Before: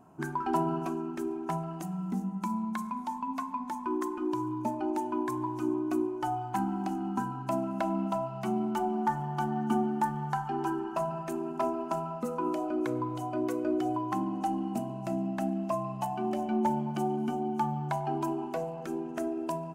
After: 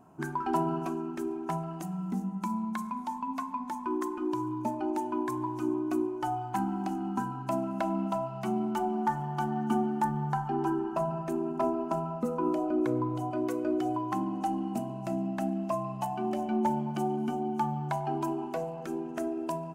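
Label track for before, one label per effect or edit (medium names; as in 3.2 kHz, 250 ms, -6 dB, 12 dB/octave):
10.040000	13.310000	tilt shelf lows +4 dB, about 930 Hz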